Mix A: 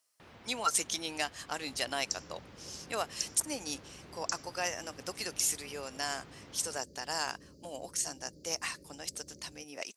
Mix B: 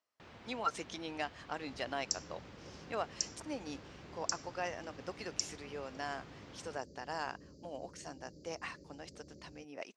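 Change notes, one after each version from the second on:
speech: add tape spacing loss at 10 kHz 28 dB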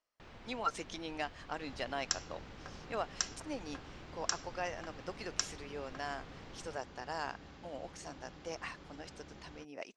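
second sound: remove Chebyshev band-stop 590–4500 Hz, order 5; master: remove high-pass 76 Hz

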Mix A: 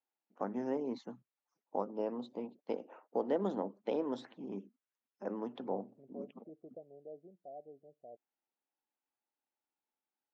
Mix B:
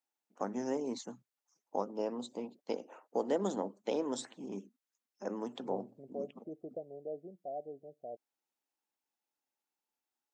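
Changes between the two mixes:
second voice +7.0 dB; master: remove distance through air 280 m

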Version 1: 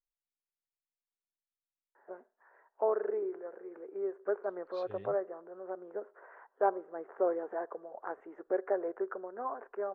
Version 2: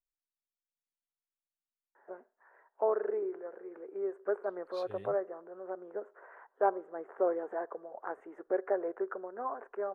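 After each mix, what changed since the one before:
master: remove distance through air 130 m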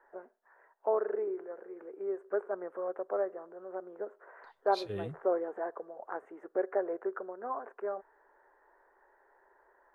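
first voice: entry -1.95 s; second voice +9.5 dB

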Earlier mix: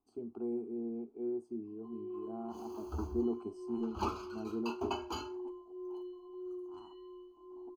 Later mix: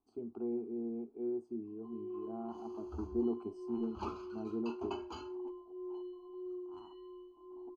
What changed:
second sound -6.0 dB; master: add distance through air 75 m

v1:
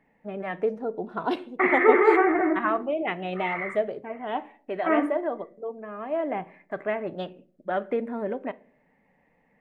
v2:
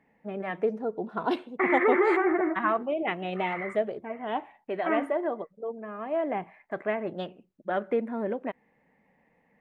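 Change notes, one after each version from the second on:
reverb: off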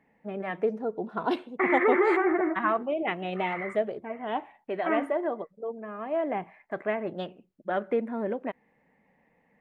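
no change

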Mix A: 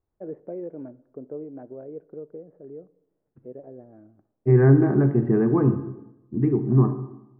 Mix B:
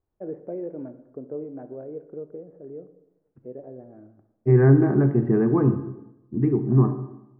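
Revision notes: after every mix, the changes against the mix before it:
first voice: send +11.0 dB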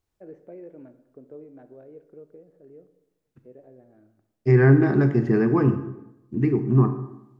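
first voice -9.5 dB; master: remove low-pass 1.1 kHz 12 dB/octave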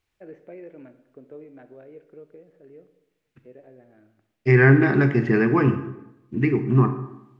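master: add peaking EQ 2.4 kHz +12.5 dB 1.6 oct

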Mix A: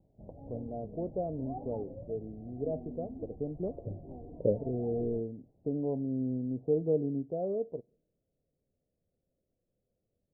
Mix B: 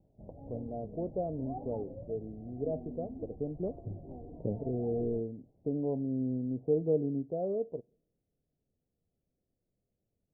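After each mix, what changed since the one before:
second voice: remove resonant low-pass 550 Hz, resonance Q 4.3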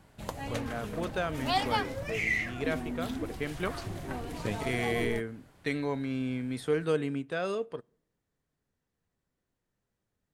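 background +8.0 dB; master: remove steep low-pass 710 Hz 48 dB/octave

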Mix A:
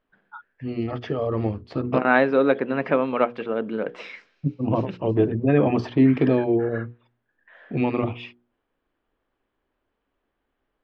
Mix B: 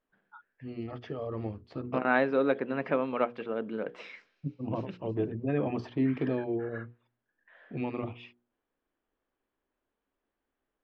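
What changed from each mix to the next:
first voice -11.0 dB; second voice -7.5 dB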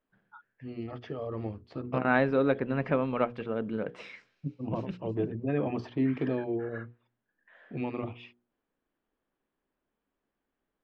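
second voice: remove band-pass 240–6400 Hz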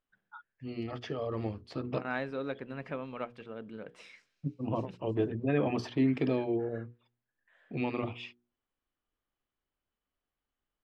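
second voice -12.0 dB; master: remove tape spacing loss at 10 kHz 21 dB

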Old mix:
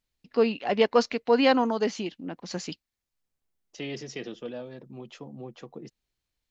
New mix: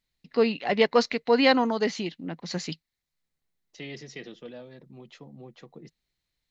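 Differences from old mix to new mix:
second voice -5.5 dB; master: add graphic EQ with 31 bands 160 Hz +7 dB, 2 kHz +7 dB, 4 kHz +7 dB

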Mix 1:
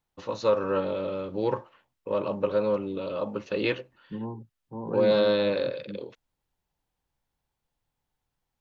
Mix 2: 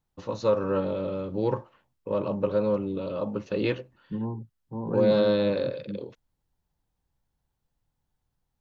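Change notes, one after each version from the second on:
first voice: add treble shelf 2.4 kHz -11 dB; master: add tone controls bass +6 dB, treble +10 dB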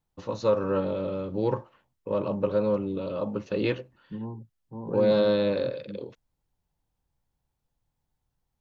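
second voice -4.5 dB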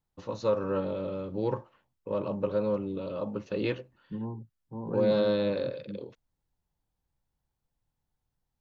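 first voice -3.5 dB

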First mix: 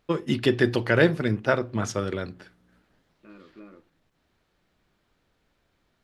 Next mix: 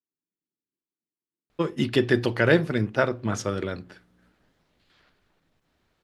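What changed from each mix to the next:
first voice: entry +1.50 s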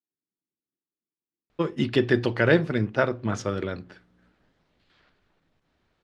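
master: add distance through air 67 m

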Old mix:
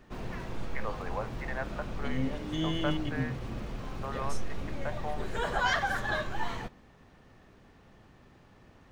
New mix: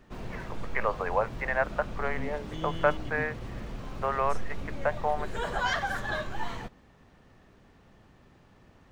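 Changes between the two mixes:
first voice +11.5 dB; second voice -5.0 dB; reverb: off

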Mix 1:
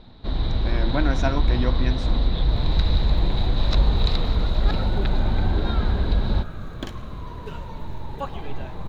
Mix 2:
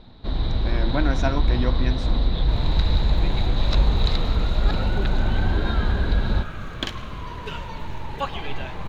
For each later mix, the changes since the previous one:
second sound: add peaking EQ 3.1 kHz +11.5 dB 2.6 oct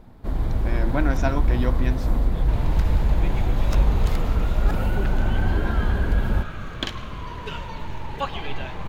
first sound: remove resonant low-pass 3.9 kHz, resonance Q 13

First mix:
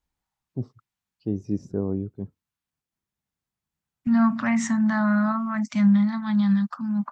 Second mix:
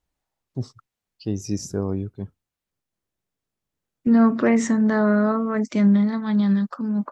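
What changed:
first voice: remove band-pass filter 250 Hz, Q 0.55; second voice: remove Chebyshev band-stop 200–850 Hz, order 2

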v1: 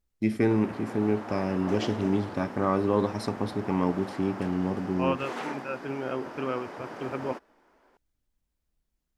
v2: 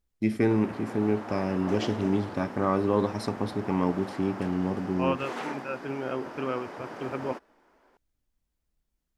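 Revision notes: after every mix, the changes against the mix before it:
no change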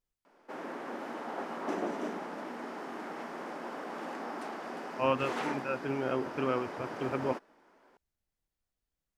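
first voice: muted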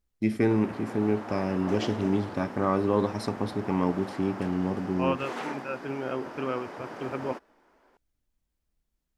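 first voice: unmuted

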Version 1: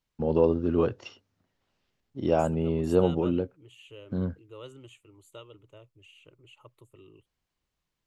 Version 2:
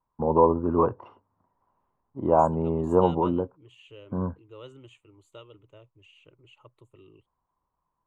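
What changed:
first voice: add resonant low-pass 1 kHz, resonance Q 7.8; master: add distance through air 73 m

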